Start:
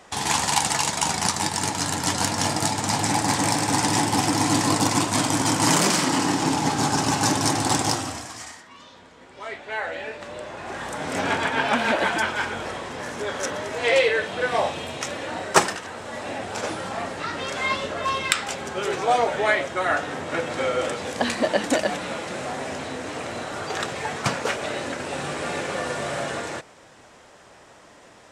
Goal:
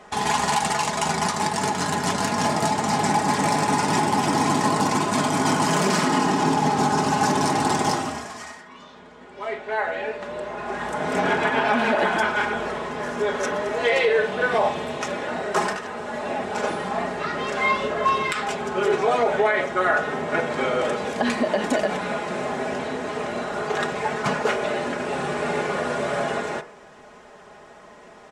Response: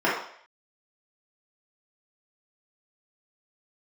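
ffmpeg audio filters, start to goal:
-filter_complex "[0:a]highshelf=f=3k:g=-9.5,aecho=1:1:4.8:0.64,alimiter=limit=-14dB:level=0:latency=1:release=59,asplit=2[a][b];[1:a]atrim=start_sample=2205[c];[b][c]afir=irnorm=-1:irlink=0,volume=-27dB[d];[a][d]amix=inputs=2:normalize=0,volume=2dB"

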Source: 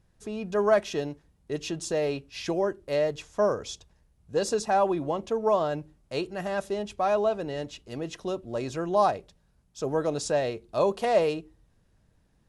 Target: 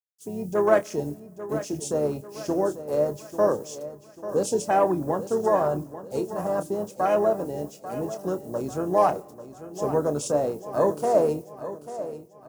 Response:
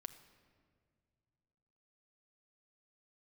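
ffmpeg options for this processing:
-filter_complex "[0:a]highpass=f=120:w=0.5412,highpass=f=120:w=1.3066,afwtdn=0.02,acrusher=bits=11:mix=0:aa=0.000001,aexciter=amount=6.2:drive=8.3:freq=5.3k,asplit=3[a][b][c];[b]asetrate=22050,aresample=44100,atempo=2,volume=-16dB[d];[c]asetrate=37084,aresample=44100,atempo=1.18921,volume=-13dB[e];[a][d][e]amix=inputs=3:normalize=0,asplit=2[f][g];[g]adelay=27,volume=-11dB[h];[f][h]amix=inputs=2:normalize=0,aecho=1:1:842|1684|2526|3368:0.224|0.0985|0.0433|0.0191,asplit=2[i][j];[1:a]atrim=start_sample=2205,lowpass=5.1k[k];[j][k]afir=irnorm=-1:irlink=0,volume=-8dB[l];[i][l]amix=inputs=2:normalize=0"

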